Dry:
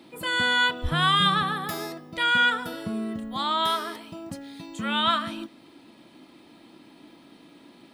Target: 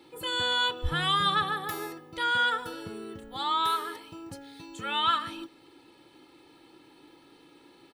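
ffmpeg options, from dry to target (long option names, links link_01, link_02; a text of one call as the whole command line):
ffmpeg -i in.wav -af "aecho=1:1:2.3:0.73,volume=-5dB" out.wav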